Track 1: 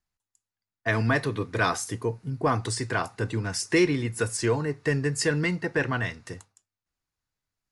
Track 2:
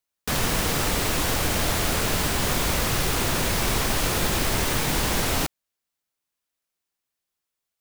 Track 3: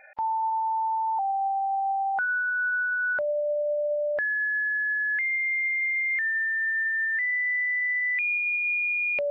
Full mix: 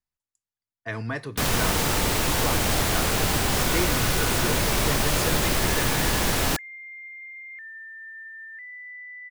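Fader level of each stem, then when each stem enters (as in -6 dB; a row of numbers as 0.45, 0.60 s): -7.0, +0.5, -14.5 dB; 0.00, 1.10, 1.40 s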